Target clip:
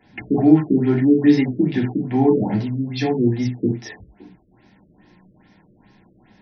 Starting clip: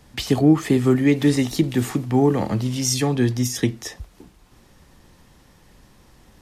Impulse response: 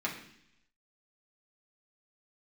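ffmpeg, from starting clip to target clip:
-filter_complex "[0:a]asuperstop=centerf=1200:order=8:qfactor=4.5[a];[1:a]atrim=start_sample=2205,afade=t=out:st=0.16:d=0.01,atrim=end_sample=7497,atrim=end_sample=4410[b];[a][b]afir=irnorm=-1:irlink=0,afftfilt=real='re*lt(b*sr/1024,590*pow(6400/590,0.5+0.5*sin(2*PI*2.4*pts/sr)))':imag='im*lt(b*sr/1024,590*pow(6400/590,0.5+0.5*sin(2*PI*2.4*pts/sr)))':win_size=1024:overlap=0.75,volume=-3.5dB"

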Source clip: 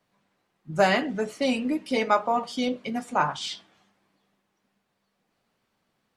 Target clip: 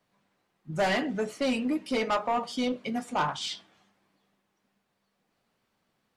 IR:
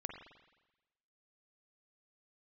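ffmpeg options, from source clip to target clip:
-af "asoftclip=type=tanh:threshold=-23.5dB,aeval=exprs='0.0668*(cos(1*acos(clip(val(0)/0.0668,-1,1)))-cos(1*PI/2))+0.00596*(cos(3*acos(clip(val(0)/0.0668,-1,1)))-cos(3*PI/2))':c=same,volume=1.5dB"

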